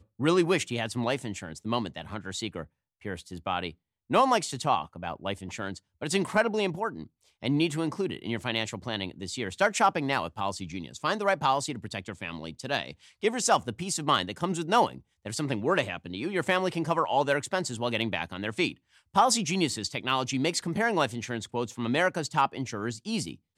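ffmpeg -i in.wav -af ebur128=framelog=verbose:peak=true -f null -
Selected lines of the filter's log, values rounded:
Integrated loudness:
  I:         -28.8 LUFS
  Threshold: -39.1 LUFS
Loudness range:
  LRA:         3.0 LU
  Threshold: -49.1 LUFS
  LRA low:   -30.7 LUFS
  LRA high:  -27.7 LUFS
True peak:
  Peak:      -11.5 dBFS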